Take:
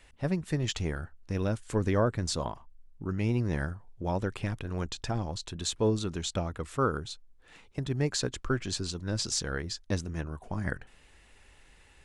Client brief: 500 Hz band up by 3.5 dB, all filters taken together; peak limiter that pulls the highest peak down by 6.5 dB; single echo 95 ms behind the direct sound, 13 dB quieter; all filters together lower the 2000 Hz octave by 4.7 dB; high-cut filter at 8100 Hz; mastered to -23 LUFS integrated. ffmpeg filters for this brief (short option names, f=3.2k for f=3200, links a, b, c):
-af "lowpass=8.1k,equalizer=f=500:t=o:g=4.5,equalizer=f=2k:t=o:g=-7,alimiter=limit=-20dB:level=0:latency=1,aecho=1:1:95:0.224,volume=10dB"